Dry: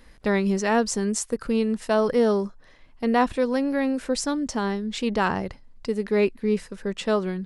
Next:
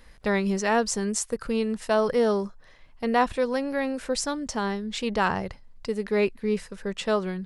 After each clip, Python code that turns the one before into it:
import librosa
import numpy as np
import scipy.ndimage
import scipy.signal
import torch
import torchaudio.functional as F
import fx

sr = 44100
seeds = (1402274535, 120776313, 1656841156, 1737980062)

y = fx.peak_eq(x, sr, hz=280.0, db=-6.0, octaves=0.9)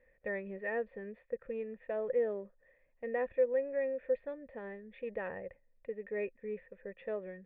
y = fx.formant_cascade(x, sr, vowel='e')
y = y * librosa.db_to_amplitude(-1.5)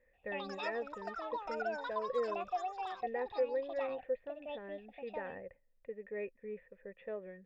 y = fx.echo_pitch(x, sr, ms=134, semitones=6, count=3, db_per_echo=-3.0)
y = y * librosa.db_to_amplitude(-4.0)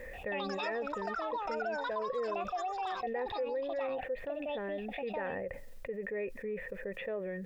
y = fx.env_flatten(x, sr, amount_pct=70)
y = y * librosa.db_to_amplitude(-4.0)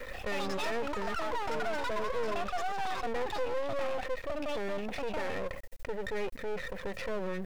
y = fx.diode_clip(x, sr, knee_db=-32.0)
y = np.maximum(y, 0.0)
y = y * librosa.db_to_amplitude(9.0)